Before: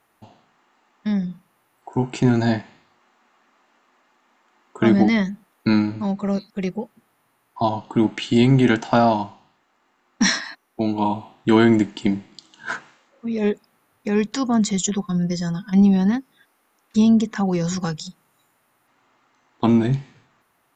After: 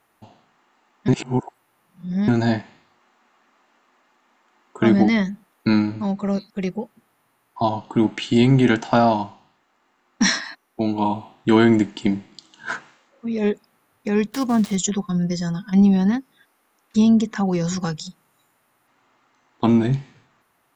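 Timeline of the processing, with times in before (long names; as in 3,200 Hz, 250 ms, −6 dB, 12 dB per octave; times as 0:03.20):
0:01.08–0:02.28: reverse
0:14.29–0:14.76: gap after every zero crossing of 0.093 ms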